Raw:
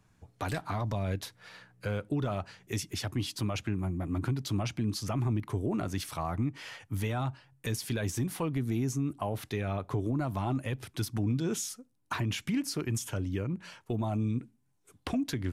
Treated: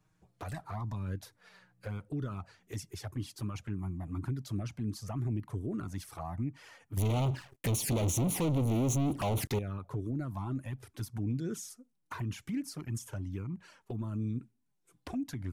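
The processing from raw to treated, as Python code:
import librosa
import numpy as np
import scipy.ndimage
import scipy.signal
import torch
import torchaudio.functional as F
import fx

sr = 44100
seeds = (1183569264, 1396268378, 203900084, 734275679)

y = fx.dynamic_eq(x, sr, hz=3200.0, q=0.97, threshold_db=-55.0, ratio=4.0, max_db=-7)
y = fx.leveller(y, sr, passes=5, at=(6.97, 9.59))
y = fx.env_flanger(y, sr, rest_ms=6.6, full_db=-24.5)
y = y * librosa.db_to_amplitude(-3.5)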